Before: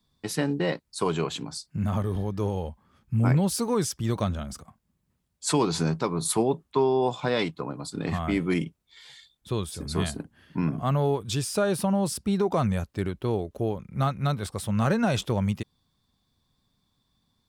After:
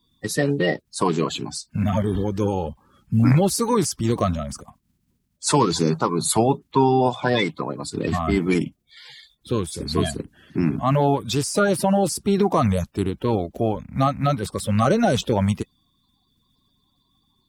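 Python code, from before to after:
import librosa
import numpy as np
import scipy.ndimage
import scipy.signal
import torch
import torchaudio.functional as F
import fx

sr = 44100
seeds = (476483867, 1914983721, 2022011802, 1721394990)

y = fx.spec_quant(x, sr, step_db=30)
y = y * 10.0 ** (6.0 / 20.0)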